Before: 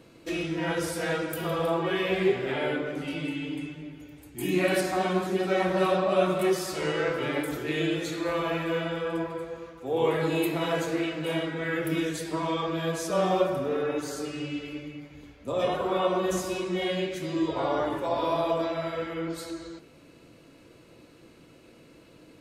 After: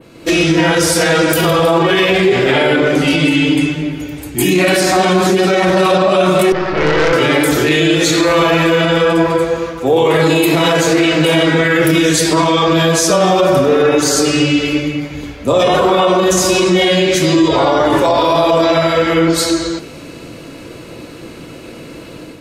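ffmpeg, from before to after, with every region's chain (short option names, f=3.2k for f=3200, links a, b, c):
-filter_complex "[0:a]asettb=1/sr,asplit=3[a][b][c];[a]atrim=end=6.524[d];[b]atrim=start=6.52:end=7.13,asetpts=PTS-STARTPTS,afade=t=in:d=0.004:c=qsin,afade=t=out:st=0.606:d=0.004:c=qsin,lowpass=f=2.4k:w=0.5412,lowpass=f=2.4k:w=1.3066,acompressor=mode=upward:threshold=-31dB:ratio=2.5:attack=3.2:release=140:knee=2.83:detection=peak,aeval=exprs='(tanh(31.6*val(0)+0.7)-tanh(0.7))/31.6':c=same[e];[c]atrim=start=7.126[f];[d][e]acrossfade=d=0.004:c1=hsin:c2=qsin[g];[g][f]acrossfade=d=0.004:c1=qsin:c2=hsin,adynamicequalizer=threshold=0.00251:dfrequency=5800:dqfactor=0.86:tfrequency=5800:tqfactor=0.86:attack=5:release=100:ratio=0.375:range=3.5:mode=boostabove:tftype=bell,dynaudnorm=f=100:g=5:m=9.5dB,alimiter=level_in=14.5dB:limit=-1dB:release=50:level=0:latency=1,volume=-2.5dB"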